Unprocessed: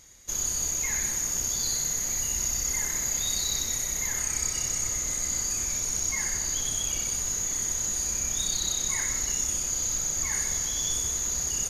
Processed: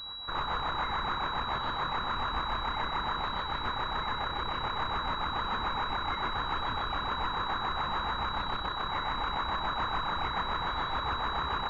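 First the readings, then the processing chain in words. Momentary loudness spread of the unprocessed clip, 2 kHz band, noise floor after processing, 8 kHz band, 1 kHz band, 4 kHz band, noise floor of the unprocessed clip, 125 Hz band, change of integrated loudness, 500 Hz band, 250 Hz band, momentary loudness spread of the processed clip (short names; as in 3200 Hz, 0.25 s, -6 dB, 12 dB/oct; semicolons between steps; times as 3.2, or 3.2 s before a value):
1 LU, +3.5 dB, -35 dBFS, under -40 dB, +16.5 dB, -0.5 dB, -31 dBFS, 0.0 dB, -6.0 dB, +5.0 dB, +2.0 dB, 1 LU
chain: limiter -24.5 dBFS, peak gain reduction 10 dB; rotary speaker horn 7 Hz; pulse-width modulation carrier 3900 Hz; gain +5.5 dB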